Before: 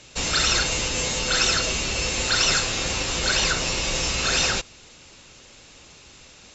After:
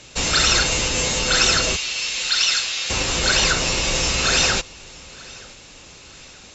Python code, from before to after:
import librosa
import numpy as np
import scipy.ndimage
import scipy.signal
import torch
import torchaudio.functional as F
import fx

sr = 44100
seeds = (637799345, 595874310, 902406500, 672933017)

y = fx.bandpass_q(x, sr, hz=3700.0, q=0.96, at=(1.75, 2.89), fade=0.02)
y = fx.echo_feedback(y, sr, ms=925, feedback_pct=38, wet_db=-23.0)
y = F.gain(torch.from_numpy(y), 4.0).numpy()